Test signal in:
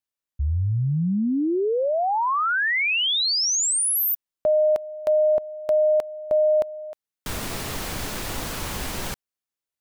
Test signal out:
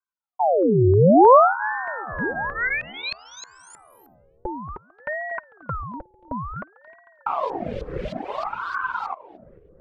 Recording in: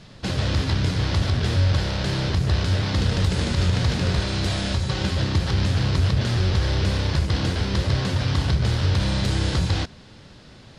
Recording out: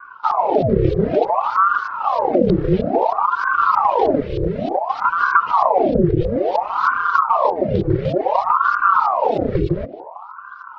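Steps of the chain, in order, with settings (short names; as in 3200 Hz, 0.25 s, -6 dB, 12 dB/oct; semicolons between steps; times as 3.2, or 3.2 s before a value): notch comb 370 Hz; reverb removal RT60 1.5 s; dynamic EQ 580 Hz, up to +5 dB, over -36 dBFS, Q 2.3; darkening echo 0.224 s, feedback 76%, low-pass 1500 Hz, level -19.5 dB; rotary speaker horn 0.7 Hz; HPF 77 Hz 12 dB/oct; resonant low shelf 400 Hz +13.5 dB, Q 3; LFO low-pass saw up 3.2 Hz 810–3600 Hz; ring modulator with a swept carrier 770 Hz, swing 70%, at 0.57 Hz; gain -1.5 dB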